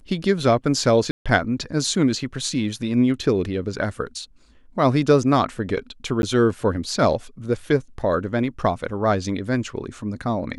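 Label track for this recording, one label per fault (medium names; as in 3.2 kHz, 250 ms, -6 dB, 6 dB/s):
1.110000	1.260000	dropout 146 ms
6.220000	6.230000	dropout 11 ms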